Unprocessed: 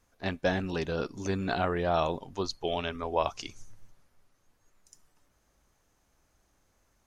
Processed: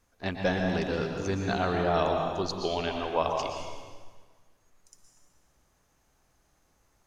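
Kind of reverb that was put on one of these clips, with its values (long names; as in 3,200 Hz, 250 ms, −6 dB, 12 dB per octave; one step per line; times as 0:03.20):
dense smooth reverb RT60 1.5 s, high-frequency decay 0.9×, pre-delay 105 ms, DRR 2 dB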